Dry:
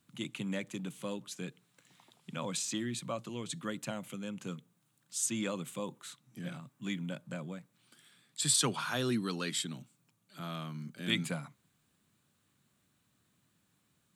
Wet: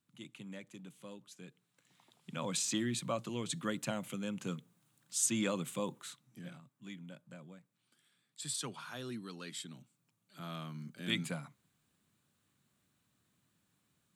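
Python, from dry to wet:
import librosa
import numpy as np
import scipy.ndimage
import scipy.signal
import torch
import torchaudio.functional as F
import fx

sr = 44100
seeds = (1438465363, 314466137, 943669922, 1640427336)

y = fx.gain(x, sr, db=fx.line((1.43, -11.0), (2.65, 1.5), (5.98, 1.5), (6.7, -11.0), (9.32, -11.0), (10.54, -3.0)))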